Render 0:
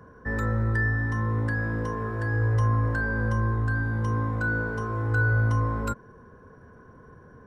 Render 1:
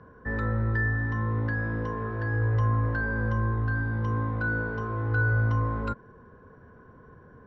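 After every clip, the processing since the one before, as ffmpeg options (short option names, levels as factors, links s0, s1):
-af "lowpass=f=4300:w=0.5412,lowpass=f=4300:w=1.3066,volume=0.841"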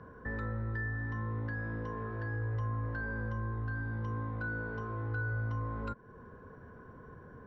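-af "acompressor=threshold=0.00891:ratio=2"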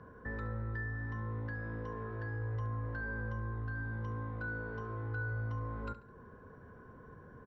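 -af "aecho=1:1:70|140|210:0.2|0.0698|0.0244,volume=0.75"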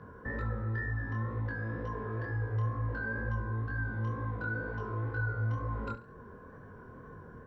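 -af "flanger=delay=19:depth=7.9:speed=2.1,volume=2.24"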